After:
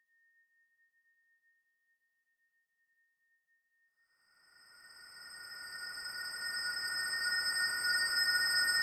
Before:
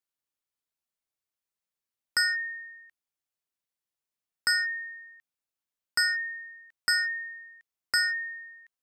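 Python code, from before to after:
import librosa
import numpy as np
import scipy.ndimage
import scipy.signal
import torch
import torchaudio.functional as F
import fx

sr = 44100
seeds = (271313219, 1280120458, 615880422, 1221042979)

y = fx.echo_feedback(x, sr, ms=803, feedback_pct=41, wet_db=-20)
y = fx.paulstretch(y, sr, seeds[0], factor=44.0, window_s=0.25, from_s=4.26)
y = y * librosa.db_to_amplitude(-3.5)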